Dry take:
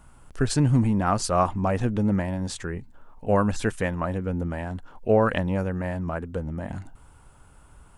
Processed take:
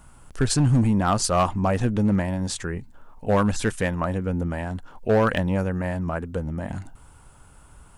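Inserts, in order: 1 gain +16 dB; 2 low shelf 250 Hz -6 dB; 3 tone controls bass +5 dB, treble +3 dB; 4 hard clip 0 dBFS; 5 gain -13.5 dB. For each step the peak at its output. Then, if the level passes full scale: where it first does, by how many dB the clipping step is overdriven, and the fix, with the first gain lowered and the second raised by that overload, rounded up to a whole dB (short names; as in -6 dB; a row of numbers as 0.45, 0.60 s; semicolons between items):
+7.5, +7.0, +7.0, 0.0, -13.5 dBFS; step 1, 7.0 dB; step 1 +9 dB, step 5 -6.5 dB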